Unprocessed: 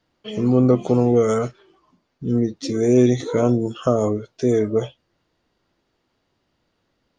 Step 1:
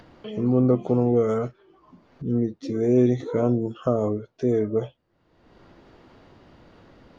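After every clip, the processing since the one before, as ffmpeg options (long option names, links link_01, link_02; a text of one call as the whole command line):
ffmpeg -i in.wav -af "lowpass=frequency=1400:poles=1,acompressor=mode=upward:threshold=-28dB:ratio=2.5,volume=-3.5dB" out.wav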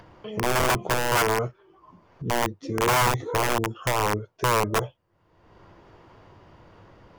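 ffmpeg -i in.wav -af "aeval=exprs='(mod(6.68*val(0)+1,2)-1)/6.68':channel_layout=same,equalizer=frequency=100:width_type=o:width=0.33:gain=6,equalizer=frequency=250:width_type=o:width=0.33:gain=-9,equalizer=frequency=1000:width_type=o:width=0.33:gain=6,equalizer=frequency=4000:width_type=o:width=0.33:gain=-6" out.wav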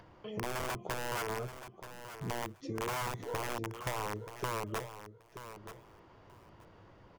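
ffmpeg -i in.wav -filter_complex "[0:a]acompressor=threshold=-27dB:ratio=6,asplit=2[link_01][link_02];[link_02]aecho=0:1:929|1858:0.266|0.0426[link_03];[link_01][link_03]amix=inputs=2:normalize=0,volume=-7dB" out.wav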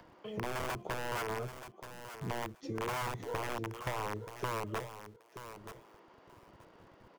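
ffmpeg -i in.wav -filter_complex "[0:a]acrossover=split=200|1200|3800[link_01][link_02][link_03][link_04];[link_01]aeval=exprs='val(0)*gte(abs(val(0)),0.00126)':channel_layout=same[link_05];[link_04]alimiter=level_in=13dB:limit=-24dB:level=0:latency=1,volume=-13dB[link_06];[link_05][link_02][link_03][link_06]amix=inputs=4:normalize=0" out.wav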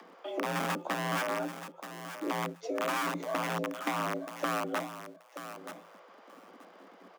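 ffmpeg -i in.wav -af "afreqshift=170,volume=4.5dB" out.wav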